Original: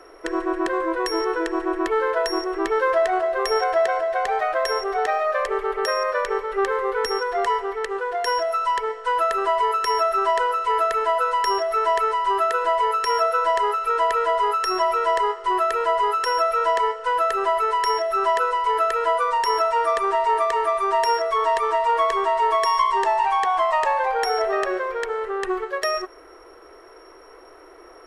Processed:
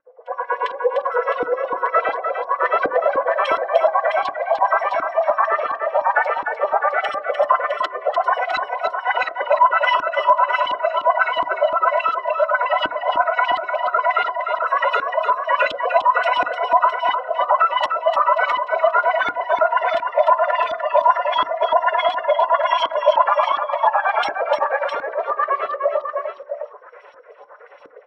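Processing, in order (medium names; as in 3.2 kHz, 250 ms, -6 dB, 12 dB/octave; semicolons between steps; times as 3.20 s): LFO high-pass sine 9 Hz 330–4700 Hz; formant-preserving pitch shift +7 st; de-hum 64.51 Hz, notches 19; LFO low-pass saw up 1.4 Hz 310–3700 Hz; multi-tap echo 300/659 ms -6.5/-8 dB; FDN reverb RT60 0.33 s, low-frequency decay 1.1×, high-frequency decay 0.3×, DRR 18 dB; trim -1 dB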